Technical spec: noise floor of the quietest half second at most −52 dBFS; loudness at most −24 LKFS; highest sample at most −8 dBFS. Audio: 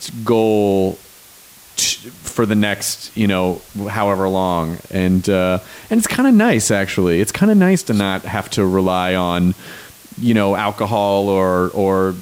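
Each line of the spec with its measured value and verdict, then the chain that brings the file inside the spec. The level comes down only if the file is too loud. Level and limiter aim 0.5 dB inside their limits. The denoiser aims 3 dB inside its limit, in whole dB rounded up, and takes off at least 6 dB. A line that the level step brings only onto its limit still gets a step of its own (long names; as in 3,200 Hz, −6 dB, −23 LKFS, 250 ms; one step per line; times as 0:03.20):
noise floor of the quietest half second −43 dBFS: out of spec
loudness −16.5 LKFS: out of spec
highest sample −4.0 dBFS: out of spec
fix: broadband denoise 6 dB, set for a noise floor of −43 dBFS
level −8 dB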